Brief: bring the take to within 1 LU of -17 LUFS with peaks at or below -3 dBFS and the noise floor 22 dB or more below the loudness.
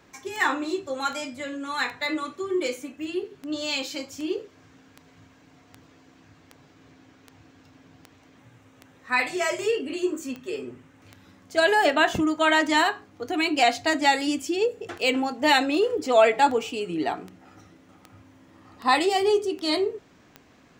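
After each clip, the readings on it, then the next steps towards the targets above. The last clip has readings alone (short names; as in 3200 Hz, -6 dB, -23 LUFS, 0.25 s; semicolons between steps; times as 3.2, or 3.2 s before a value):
clicks 27; loudness -24.5 LUFS; peak -6.5 dBFS; loudness target -17.0 LUFS
-> de-click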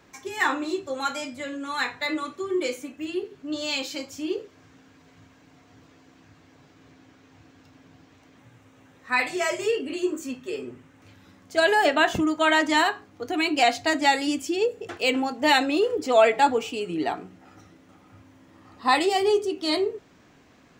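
clicks 0; loudness -24.5 LUFS; peak -6.5 dBFS; loudness target -17.0 LUFS
-> gain +7.5 dB; limiter -3 dBFS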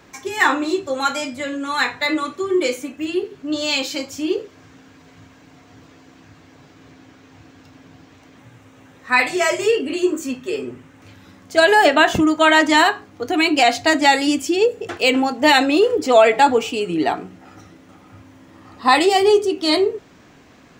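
loudness -17.5 LUFS; peak -3.0 dBFS; noise floor -49 dBFS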